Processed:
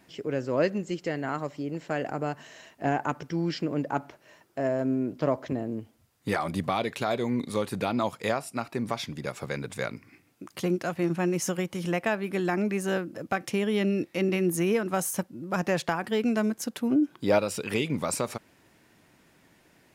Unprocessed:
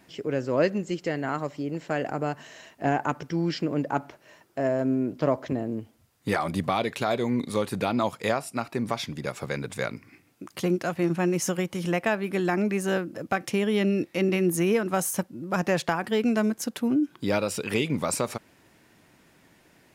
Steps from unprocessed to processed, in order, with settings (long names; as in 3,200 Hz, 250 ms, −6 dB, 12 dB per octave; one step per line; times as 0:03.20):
0:16.91–0:17.39: dynamic equaliser 630 Hz, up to +7 dB, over −37 dBFS, Q 0.8
level −2 dB